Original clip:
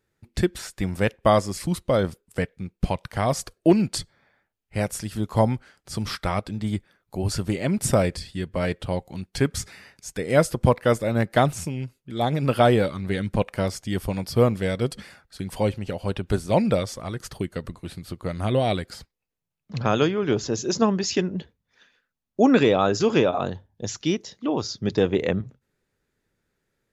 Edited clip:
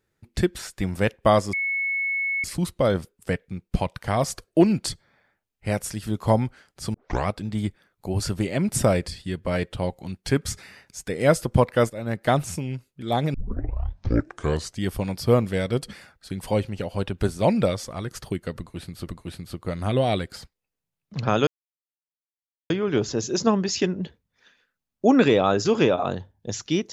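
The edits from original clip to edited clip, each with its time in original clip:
1.53 add tone 2200 Hz -22.5 dBFS 0.91 s
6.03 tape start 0.33 s
10.99–11.53 fade in, from -12 dB
12.43 tape start 1.48 s
17.65–18.16 loop, 2 plays
20.05 insert silence 1.23 s

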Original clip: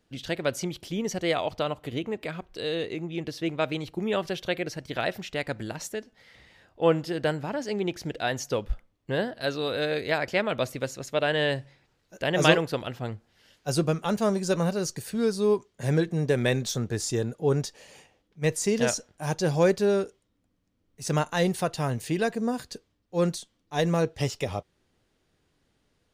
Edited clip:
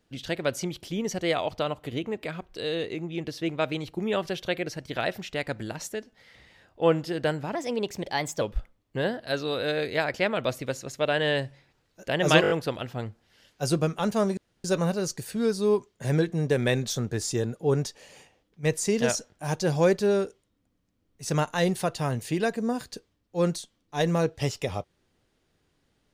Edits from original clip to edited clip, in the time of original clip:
7.55–8.55 speed 116%
12.56 stutter 0.02 s, 5 plays
14.43 insert room tone 0.27 s

